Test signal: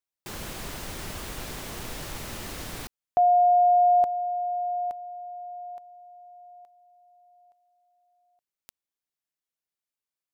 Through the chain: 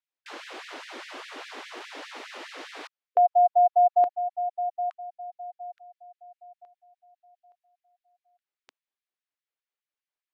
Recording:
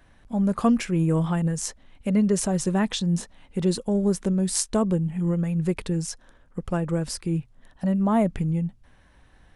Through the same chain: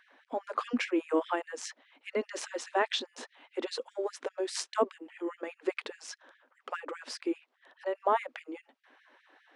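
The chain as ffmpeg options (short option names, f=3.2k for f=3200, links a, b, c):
-af "highpass=140,lowpass=3.5k,afftfilt=real='re*gte(b*sr/1024,220*pow(1700/220,0.5+0.5*sin(2*PI*4.9*pts/sr)))':imag='im*gte(b*sr/1024,220*pow(1700/220,0.5+0.5*sin(2*PI*4.9*pts/sr)))':win_size=1024:overlap=0.75,volume=1.5dB"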